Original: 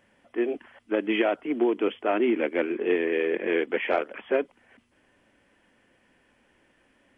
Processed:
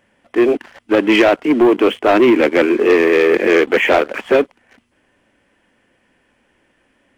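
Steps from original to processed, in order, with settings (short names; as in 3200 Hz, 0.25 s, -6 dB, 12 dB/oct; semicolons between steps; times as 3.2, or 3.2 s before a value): sample leveller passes 2; gain +8 dB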